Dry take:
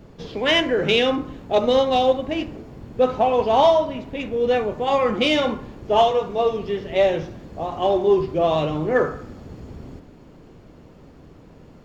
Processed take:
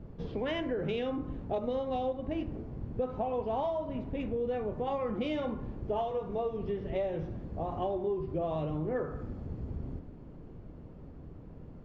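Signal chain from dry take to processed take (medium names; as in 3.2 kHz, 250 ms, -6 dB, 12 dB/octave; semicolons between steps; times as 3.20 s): low-pass 1.1 kHz 6 dB/octave; bass shelf 160 Hz +9 dB; compression 6:1, threshold -24 dBFS, peak gain reduction 12 dB; trim -6 dB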